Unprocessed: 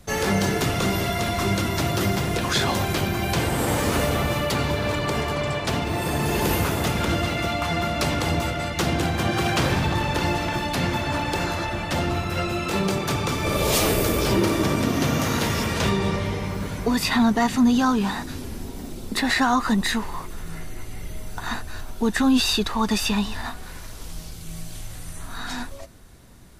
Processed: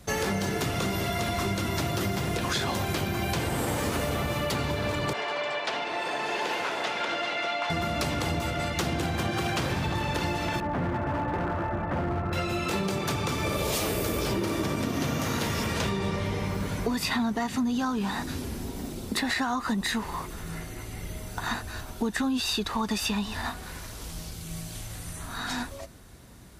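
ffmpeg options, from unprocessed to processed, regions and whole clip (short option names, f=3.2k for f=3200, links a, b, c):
-filter_complex "[0:a]asettb=1/sr,asplit=3[a][b][c];[a]atrim=end=5.134[d];[b]atrim=start=5.13:end=7.7,asetpts=PTS-STARTPTS,afade=t=in:d=0.004:c=qsin,afade=t=out:st=2.566:d=0.004:c=qsin,highpass=590,lowpass=4.3k,bandreject=f=1.2k:w=13[e];[c]atrim=start=7.696[f];[d][e]acrossfade=d=0.004:c1=hsin:c2=qsin[g];[g][f]acrossfade=d=0.004:c1=qsin:c2=hsin,asettb=1/sr,asplit=3[h][i][j];[h]atrim=end=10.604[k];[i]atrim=start=10.6:end=12.33,asetpts=PTS-STARTPTS,afade=t=in:d=0.004:c=qsin,afade=t=out:st=1.726:d=0.004:c=qsin,lowpass=f=1.6k:w=0.5412,lowpass=f=1.6k:w=1.3066,asoftclip=type=hard:threshold=-22.5dB[l];[j]atrim=start=12.326[m];[k][l]acrossfade=d=0.004:c1=hsin:c2=qsin[n];[n][m]acrossfade=d=0.004:c1=qsin:c2=hsin,highpass=40,acompressor=threshold=-25dB:ratio=6"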